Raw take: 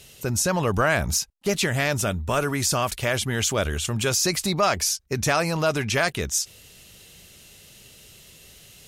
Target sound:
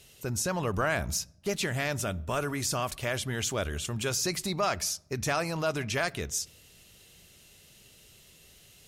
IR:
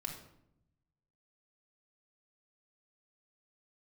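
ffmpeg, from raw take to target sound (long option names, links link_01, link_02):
-filter_complex "[0:a]asplit=2[link_01][link_02];[1:a]atrim=start_sample=2205,highshelf=frequency=3800:gain=-8[link_03];[link_02][link_03]afir=irnorm=-1:irlink=0,volume=-14.5dB[link_04];[link_01][link_04]amix=inputs=2:normalize=0,volume=-8dB"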